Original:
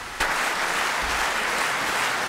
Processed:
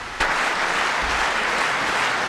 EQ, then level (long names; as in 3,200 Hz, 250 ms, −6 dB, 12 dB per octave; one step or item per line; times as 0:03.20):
high-frequency loss of the air 61 metres
+3.5 dB